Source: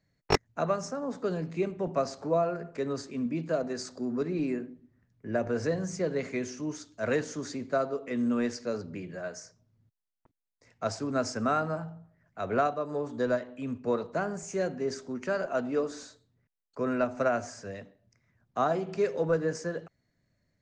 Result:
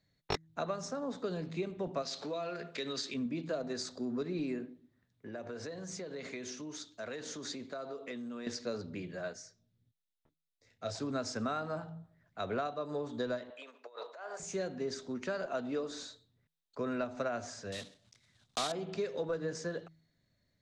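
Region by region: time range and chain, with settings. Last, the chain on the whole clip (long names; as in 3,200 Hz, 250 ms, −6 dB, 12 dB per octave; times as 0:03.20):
0:02.02–0:03.14: meter weighting curve D + downward compressor 2.5 to 1, threshold −34 dBFS
0:04.65–0:08.47: downward compressor 10 to 1, threshold −34 dBFS + low-shelf EQ 170 Hz −8.5 dB
0:09.33–0:10.95: parametric band 1,000 Hz −8 dB 0.62 octaves + micro pitch shift up and down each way 12 cents
0:13.50–0:14.40: high-shelf EQ 5,700 Hz −9 dB + compressor whose output falls as the input rises −35 dBFS, ratio −0.5 + high-pass filter 540 Hz 24 dB per octave
0:17.72–0:18.72: one scale factor per block 3 bits + low-pass filter 8,300 Hz 24 dB per octave + high-shelf EQ 3,300 Hz +11 dB
whole clip: parametric band 3,700 Hz +11 dB 0.48 octaves; hum removal 161 Hz, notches 2; downward compressor 4 to 1, threshold −30 dBFS; level −2.5 dB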